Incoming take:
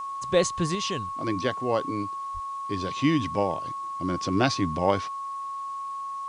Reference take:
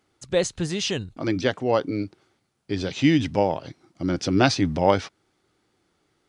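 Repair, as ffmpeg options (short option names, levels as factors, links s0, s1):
-filter_complex "[0:a]bandreject=f=1100:w=30,asplit=3[s0][s1][s2];[s0]afade=t=out:st=2.33:d=0.02[s3];[s1]highpass=f=140:w=0.5412,highpass=f=140:w=1.3066,afade=t=in:st=2.33:d=0.02,afade=t=out:st=2.45:d=0.02[s4];[s2]afade=t=in:st=2.45:d=0.02[s5];[s3][s4][s5]amix=inputs=3:normalize=0,agate=range=0.0891:threshold=0.0501,asetnsamples=n=441:p=0,asendcmd='0.75 volume volume 4.5dB',volume=1"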